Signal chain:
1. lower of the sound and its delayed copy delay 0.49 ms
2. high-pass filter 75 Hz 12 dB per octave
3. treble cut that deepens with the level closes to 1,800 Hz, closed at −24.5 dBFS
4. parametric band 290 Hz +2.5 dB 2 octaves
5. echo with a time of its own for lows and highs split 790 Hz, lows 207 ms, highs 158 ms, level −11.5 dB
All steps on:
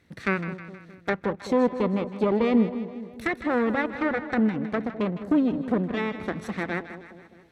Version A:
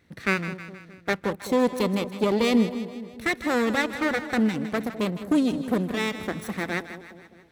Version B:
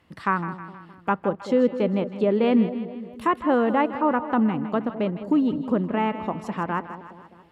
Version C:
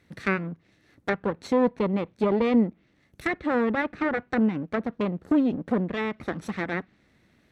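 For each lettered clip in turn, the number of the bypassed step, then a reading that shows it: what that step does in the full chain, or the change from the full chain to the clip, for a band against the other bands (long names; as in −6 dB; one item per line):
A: 3, 4 kHz band +9.5 dB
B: 1, 1 kHz band +5.5 dB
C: 5, echo-to-direct ratio −10.0 dB to none audible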